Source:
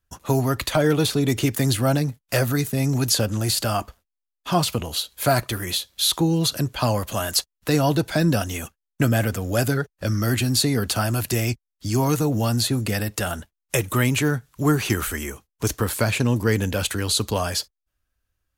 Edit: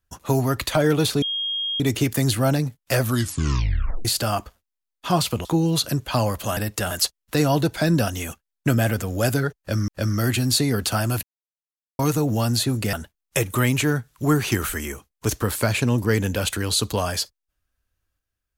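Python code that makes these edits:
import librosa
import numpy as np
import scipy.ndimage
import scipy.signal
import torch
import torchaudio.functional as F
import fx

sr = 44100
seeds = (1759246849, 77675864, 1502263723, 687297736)

y = fx.edit(x, sr, fx.insert_tone(at_s=1.22, length_s=0.58, hz=3250.0, db=-23.0),
    fx.tape_stop(start_s=2.42, length_s=1.05),
    fx.cut(start_s=4.87, length_s=1.26),
    fx.repeat(start_s=9.92, length_s=0.3, count=2),
    fx.silence(start_s=11.27, length_s=0.76),
    fx.move(start_s=12.97, length_s=0.34, to_s=7.25), tone=tone)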